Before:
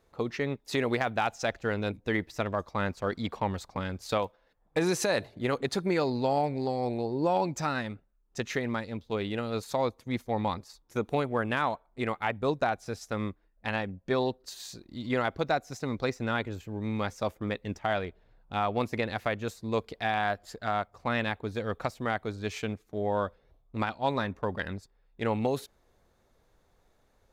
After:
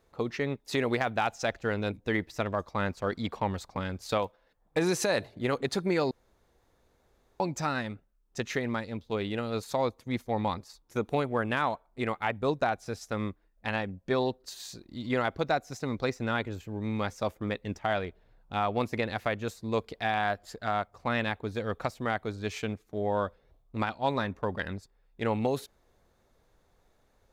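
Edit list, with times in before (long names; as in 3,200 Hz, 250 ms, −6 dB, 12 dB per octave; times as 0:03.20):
0:06.11–0:07.40: fill with room tone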